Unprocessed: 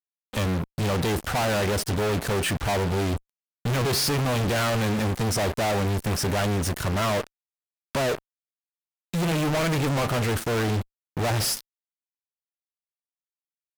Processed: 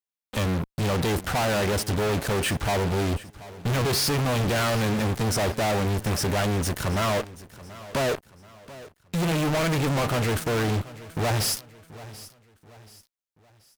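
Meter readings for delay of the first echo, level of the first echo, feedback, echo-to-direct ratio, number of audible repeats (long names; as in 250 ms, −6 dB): 732 ms, −18.0 dB, 40%, −17.5 dB, 3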